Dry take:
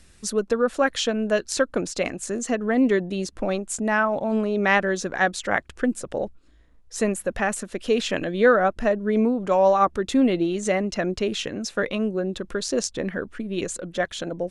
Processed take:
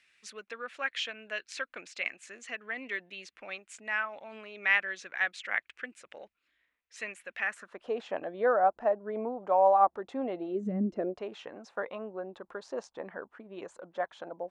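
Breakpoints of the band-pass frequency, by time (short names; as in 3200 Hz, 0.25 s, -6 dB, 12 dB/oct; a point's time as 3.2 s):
band-pass, Q 2.8
7.42 s 2300 Hz
7.86 s 790 Hz
10.47 s 790 Hz
10.71 s 150 Hz
11.23 s 880 Hz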